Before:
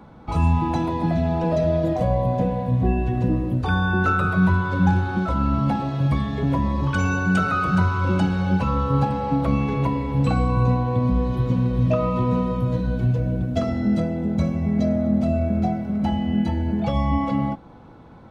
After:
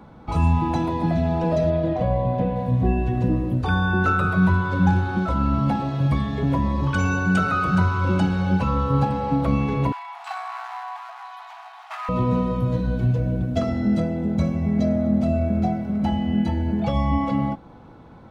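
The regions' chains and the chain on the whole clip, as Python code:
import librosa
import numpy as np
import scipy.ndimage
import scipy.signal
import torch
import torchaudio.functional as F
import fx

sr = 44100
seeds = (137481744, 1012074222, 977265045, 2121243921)

y = fx.chain(x, sr, fx.cheby1_lowpass(hz=3300.0, order=2),
    fx.quant_dither(seeds[0], bits=12, dither='none'), at=(1.7, 2.56))
y = fx.chain(y, sr, fx.high_shelf(hz=5800.0, db=-7.5),
    fx.clip_hard(threshold_db=-19.5),
    fx.brickwall_highpass(low_hz=660.0), at=(9.92, 12.09))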